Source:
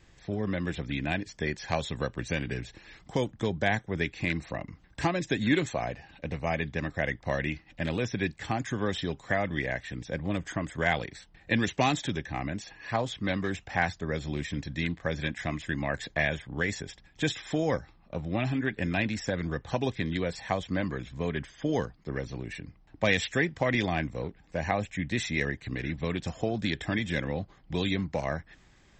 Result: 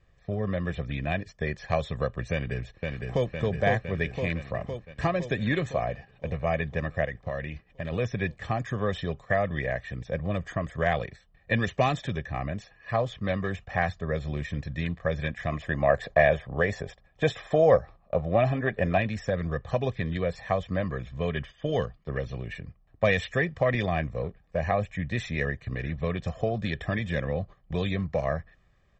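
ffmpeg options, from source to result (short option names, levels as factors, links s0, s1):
-filter_complex "[0:a]asplit=2[s0][s1];[s1]afade=t=in:st=2.31:d=0.01,afade=t=out:st=3.33:d=0.01,aecho=0:1:510|1020|1530|2040|2550|3060|3570|4080|4590|5100|5610|6120:0.668344|0.467841|0.327489|0.229242|0.160469|0.112329|0.07863|0.055041|0.0385287|0.0269701|0.0188791|0.0132153[s2];[s0][s2]amix=inputs=2:normalize=0,asplit=3[s3][s4][s5];[s3]afade=t=out:st=7.04:d=0.02[s6];[s4]acompressor=threshold=0.0282:ratio=4:attack=3.2:release=140:knee=1:detection=peak,afade=t=in:st=7.04:d=0.02,afade=t=out:st=7.91:d=0.02[s7];[s5]afade=t=in:st=7.91:d=0.02[s8];[s6][s7][s8]amix=inputs=3:normalize=0,asettb=1/sr,asplit=3[s9][s10][s11];[s9]atrim=end=15.524[s12];[s10]atrim=start=15.52:end=18.98,asetpts=PTS-STARTPTS,afade=t=in:d=0.004:c=qsin,afade=t=out:st=3.456:d=0.004:c=qsin,equalizer=f=670:t=o:w=1.6:g=8.5[s13];[s11]atrim=start=18.976[s14];[s12][s13]acrossfade=d=0.004:c1=hsin:c2=qsin[s15];[s15][s14]acrossfade=d=0.004:c1=qsin:c2=hsin,asettb=1/sr,asplit=3[s16][s17][s18];[s16]atrim=end=21.174[s19];[s17]atrim=start=21.17:end=22.54,asetpts=PTS-STARTPTS,afade=t=in:d=0.004:c=qsin,afade=t=out:st=1.366:d=0.004:c=qsin,equalizer=f=3100:w=2.2:g=8[s20];[s18]atrim=start=22.536[s21];[s19][s20]acrossfade=d=0.004:c1=hsin:c2=qsin[s22];[s22][s21]acrossfade=d=0.004:c1=qsin:c2=hsin,lowpass=f=1700:p=1,aecho=1:1:1.7:0.6,agate=range=0.398:threshold=0.00708:ratio=16:detection=peak,volume=1.19"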